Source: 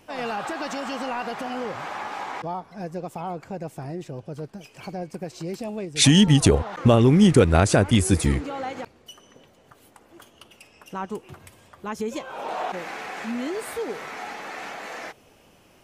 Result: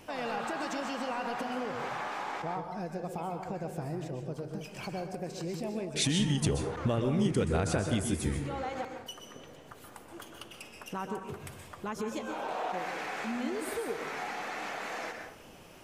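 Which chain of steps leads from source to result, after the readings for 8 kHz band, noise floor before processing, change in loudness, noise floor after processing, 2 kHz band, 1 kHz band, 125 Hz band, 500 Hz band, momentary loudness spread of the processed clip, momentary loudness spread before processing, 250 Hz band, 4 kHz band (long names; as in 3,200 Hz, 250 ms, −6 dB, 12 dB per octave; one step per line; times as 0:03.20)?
−10.0 dB, −56 dBFS, −11.0 dB, −52 dBFS, −6.5 dB, −6.0 dB, −11.5 dB, −9.0 dB, 17 LU, 20 LU, −11.0 dB, −10.5 dB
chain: downward compressor 2 to 1, threshold −42 dBFS, peak gain reduction 16.5 dB
dense smooth reverb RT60 0.63 s, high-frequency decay 0.55×, pre-delay 115 ms, DRR 4.5 dB
level +2 dB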